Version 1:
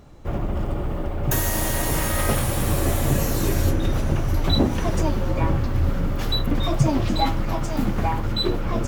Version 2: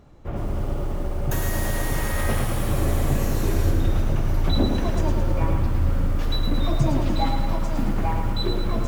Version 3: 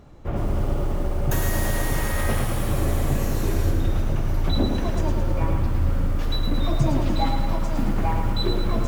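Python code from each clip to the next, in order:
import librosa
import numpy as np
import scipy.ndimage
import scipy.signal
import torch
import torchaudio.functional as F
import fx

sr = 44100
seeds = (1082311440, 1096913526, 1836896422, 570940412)

y1 = fx.high_shelf(x, sr, hz=3800.0, db=-5.5)
y1 = fx.echo_crushed(y1, sr, ms=109, feedback_pct=55, bits=7, wet_db=-5.5)
y1 = y1 * 10.0 ** (-3.5 / 20.0)
y2 = fx.rider(y1, sr, range_db=3, speed_s=2.0)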